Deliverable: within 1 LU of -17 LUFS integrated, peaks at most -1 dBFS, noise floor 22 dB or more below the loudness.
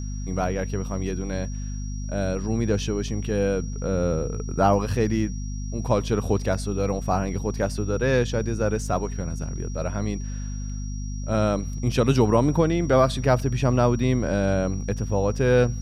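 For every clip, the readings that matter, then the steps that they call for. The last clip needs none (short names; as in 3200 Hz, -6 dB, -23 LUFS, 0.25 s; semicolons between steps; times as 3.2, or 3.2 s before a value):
hum 50 Hz; harmonics up to 250 Hz; hum level -28 dBFS; steady tone 5700 Hz; tone level -44 dBFS; loudness -24.5 LUFS; peak -7.0 dBFS; loudness target -17.0 LUFS
-> notches 50/100/150/200/250 Hz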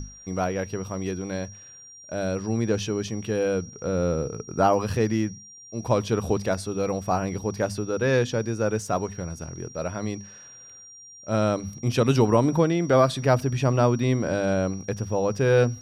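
hum none; steady tone 5700 Hz; tone level -44 dBFS
-> notch 5700 Hz, Q 30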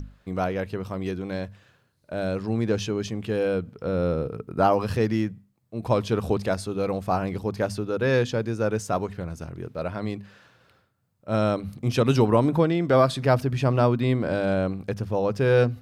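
steady tone none; loudness -25.0 LUFS; peak -8.0 dBFS; loudness target -17.0 LUFS
-> gain +8 dB; limiter -1 dBFS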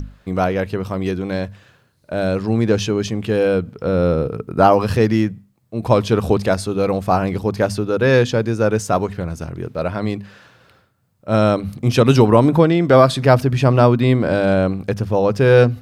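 loudness -17.0 LUFS; peak -1.0 dBFS; noise floor -59 dBFS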